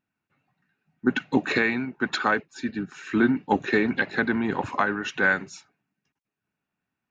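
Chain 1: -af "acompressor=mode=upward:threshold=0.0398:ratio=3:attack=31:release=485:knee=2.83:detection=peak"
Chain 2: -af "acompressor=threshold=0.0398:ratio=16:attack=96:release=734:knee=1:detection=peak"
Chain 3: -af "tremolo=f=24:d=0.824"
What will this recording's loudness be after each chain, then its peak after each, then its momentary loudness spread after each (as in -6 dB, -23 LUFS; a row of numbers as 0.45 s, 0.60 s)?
-25.0 LUFS, -30.5 LUFS, -28.5 LUFS; -8.5 dBFS, -10.0 dBFS, -9.0 dBFS; 10 LU, 4 LU, 8 LU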